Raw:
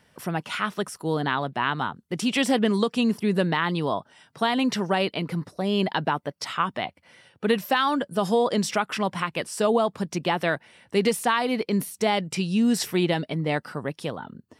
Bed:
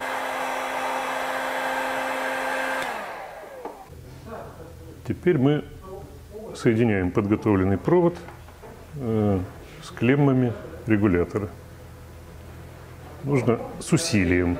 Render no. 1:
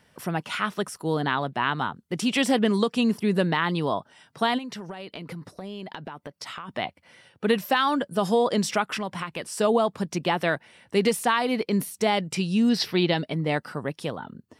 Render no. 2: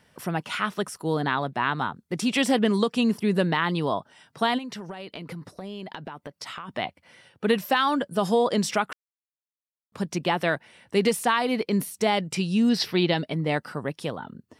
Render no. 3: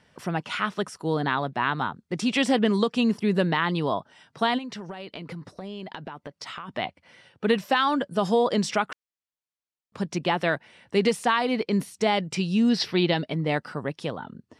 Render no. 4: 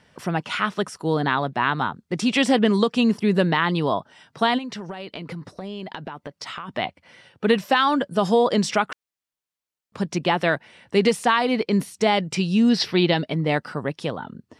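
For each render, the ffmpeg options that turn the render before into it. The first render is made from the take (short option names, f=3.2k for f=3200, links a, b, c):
-filter_complex "[0:a]asplit=3[a][b][c];[a]afade=t=out:st=4.57:d=0.02[d];[b]acompressor=threshold=-33dB:ratio=10:attack=3.2:release=140:knee=1:detection=peak,afade=t=in:st=4.57:d=0.02,afade=t=out:st=6.68:d=0.02[e];[c]afade=t=in:st=6.68:d=0.02[f];[d][e][f]amix=inputs=3:normalize=0,asettb=1/sr,asplit=3[g][h][i];[g]atrim=end=8.984[j];[h]atrim=start=8.98:end=9.57,asetpts=PTS-STARTPTS,afade=t=in:d=0.004:c=qsin,afade=t=out:st=0.586:d=0.004:c=qsin,acompressor=threshold=-30dB:ratio=2:attack=3.2:release=140:knee=1:detection=peak[k];[i]atrim=start=9.566[l];[j][k]acrossfade=d=0.004:c1=hsin:c2=qsin[m];[m][l]acrossfade=d=0.004:c1=qsin:c2=hsin,asettb=1/sr,asplit=3[n][o][p];[n]atrim=end=12.694[q];[o]atrim=start=12.69:end=13.18,asetpts=PTS-STARTPTS,afade=t=in:d=0.004:c=qsin,afade=t=out:st=0.486:d=0.004:c=qsin,highshelf=f=5.9k:t=q:w=3:g=-8.5[r];[p]atrim=start=13.176[s];[q][r]acrossfade=d=0.004:c1=hsin:c2=qsin[t];[t][s]acrossfade=d=0.004:c1=qsin:c2=hsin"
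-filter_complex "[0:a]asettb=1/sr,asplit=3[a][b][c];[a]atrim=end=1.134[d];[b]atrim=start=1.13:end=2.34,asetpts=PTS-STARTPTS,afade=t=in:d=0.004:c=qsin,afade=t=out:st=1.206:d=0.004:c=qsin,bandreject=f=3k:w=12[e];[c]atrim=start=2.336[f];[d][e]acrossfade=d=0.004:c1=hsin:c2=qsin[g];[g][f]acrossfade=d=0.004:c1=qsin:c2=hsin,asplit=3[h][i][j];[h]atrim=end=8.93,asetpts=PTS-STARTPTS,afade=t=out:st=8.926:d=0.004:c=hsin[k];[i]atrim=start=8.93:end=9.92,asetpts=PTS-STARTPTS,volume=0[l];[j]atrim=start=9.92,asetpts=PTS-STARTPTS,afade=t=in:d=0.004:c=hsin[m];[k][l][m]concat=n=3:v=0:a=1"
-af "lowpass=7.2k"
-af "volume=3.5dB"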